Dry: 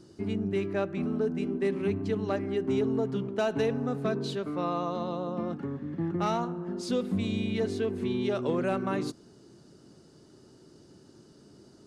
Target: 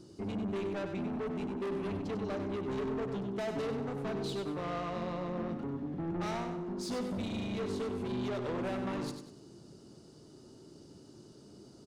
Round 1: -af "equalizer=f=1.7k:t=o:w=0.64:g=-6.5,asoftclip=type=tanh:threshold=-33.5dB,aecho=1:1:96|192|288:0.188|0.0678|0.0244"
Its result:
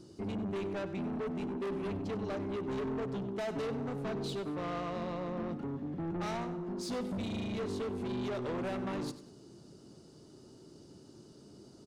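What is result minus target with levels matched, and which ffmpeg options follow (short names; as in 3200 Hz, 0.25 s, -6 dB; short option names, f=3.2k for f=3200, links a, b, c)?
echo-to-direct -7 dB
-af "equalizer=f=1.7k:t=o:w=0.64:g=-6.5,asoftclip=type=tanh:threshold=-33.5dB,aecho=1:1:96|192|288|384:0.422|0.152|0.0547|0.0197"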